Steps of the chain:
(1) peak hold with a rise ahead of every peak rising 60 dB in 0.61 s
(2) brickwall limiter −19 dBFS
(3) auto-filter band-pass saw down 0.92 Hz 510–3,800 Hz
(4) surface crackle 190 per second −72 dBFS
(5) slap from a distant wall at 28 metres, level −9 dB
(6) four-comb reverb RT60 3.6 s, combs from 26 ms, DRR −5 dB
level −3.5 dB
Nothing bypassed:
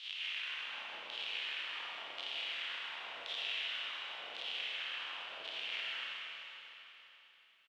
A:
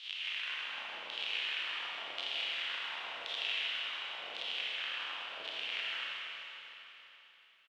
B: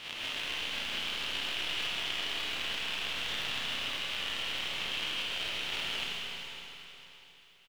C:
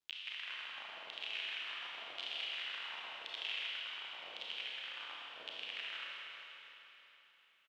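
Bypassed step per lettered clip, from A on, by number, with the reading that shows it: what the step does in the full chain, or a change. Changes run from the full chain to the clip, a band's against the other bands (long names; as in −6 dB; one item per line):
2, average gain reduction 2.0 dB
3, 250 Hz band +11.5 dB
1, change in crest factor +1.5 dB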